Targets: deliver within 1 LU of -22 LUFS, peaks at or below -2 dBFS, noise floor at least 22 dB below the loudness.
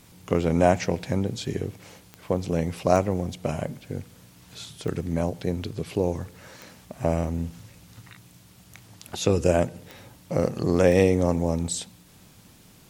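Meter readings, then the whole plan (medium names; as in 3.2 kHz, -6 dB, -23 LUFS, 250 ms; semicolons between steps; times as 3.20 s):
clicks found 6; loudness -25.5 LUFS; peak level -4.5 dBFS; loudness target -22.0 LUFS
-> de-click; trim +3.5 dB; peak limiter -2 dBFS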